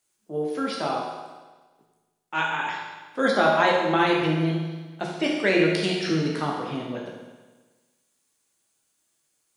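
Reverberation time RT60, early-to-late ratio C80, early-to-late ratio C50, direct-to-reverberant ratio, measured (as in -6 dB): 1.3 s, 3.5 dB, 1.5 dB, -2.5 dB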